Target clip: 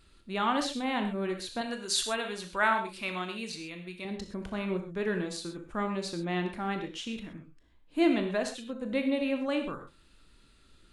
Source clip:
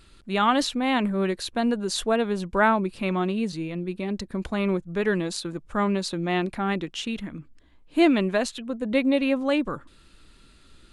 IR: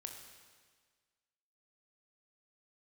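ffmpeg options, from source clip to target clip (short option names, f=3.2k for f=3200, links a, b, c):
-filter_complex "[0:a]asettb=1/sr,asplit=3[a][b][c];[a]atrim=end=1.614[d];[b]atrim=start=1.61:end=4.05,asetpts=PTS-STARTPTS,afade=t=in:d=0.004:c=qsin,afade=t=out:st=2.436:d=0.004:c=qsin,tiltshelf=f=940:g=-8.5[e];[c]atrim=start=4.046[f];[d][e]acrossfade=d=0.004:c1=hsin:c2=qsin[g];[g][f]acrossfade=d=0.004:c1=qsin:c2=hsin[h];[1:a]atrim=start_sample=2205,atrim=end_sample=6174[i];[h][i]afir=irnorm=-1:irlink=0,volume=-2.5dB"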